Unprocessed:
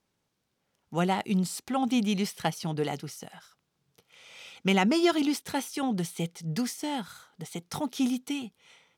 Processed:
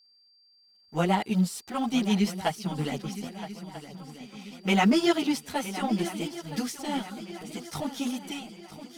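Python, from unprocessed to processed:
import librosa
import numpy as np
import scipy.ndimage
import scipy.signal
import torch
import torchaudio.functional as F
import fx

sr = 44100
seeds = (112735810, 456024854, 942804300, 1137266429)

p1 = fx.law_mismatch(x, sr, coded='A')
p2 = fx.chorus_voices(p1, sr, voices=4, hz=1.2, base_ms=12, depth_ms=3.0, mix_pct=65)
p3 = p2 + 10.0 ** (-63.0 / 20.0) * np.sin(2.0 * np.pi * 4700.0 * np.arange(len(p2)) / sr)
p4 = p3 + fx.echo_swing(p3, sr, ms=1289, ratio=3, feedback_pct=45, wet_db=-13.5, dry=0)
y = p4 * 10.0 ** (4.0 / 20.0)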